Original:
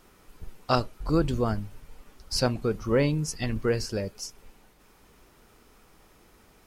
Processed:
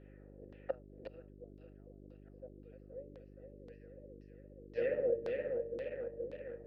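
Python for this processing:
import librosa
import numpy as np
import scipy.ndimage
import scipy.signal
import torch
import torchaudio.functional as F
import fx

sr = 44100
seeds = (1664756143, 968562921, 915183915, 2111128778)

p1 = fx.reverse_delay_fb(x, sr, ms=236, feedback_pct=83, wet_db=-6)
p2 = fx.env_lowpass(p1, sr, base_hz=1600.0, full_db=-21.5)
p3 = fx.quant_dither(p2, sr, seeds[0], bits=6, dither='none')
p4 = p2 + (p3 * 10.0 ** (-11.0 / 20.0))
p5 = fx.gate_flip(p4, sr, shuts_db=-20.0, range_db=-32)
p6 = fx.vowel_filter(p5, sr, vowel='e')
p7 = fx.dmg_buzz(p6, sr, base_hz=50.0, harmonics=8, level_db=-62.0, tilt_db=-3, odd_only=False)
p8 = fx.filter_lfo_lowpass(p7, sr, shape='saw_down', hz=1.9, low_hz=290.0, high_hz=4200.0, q=1.8)
y = p8 * 10.0 ** (5.0 / 20.0)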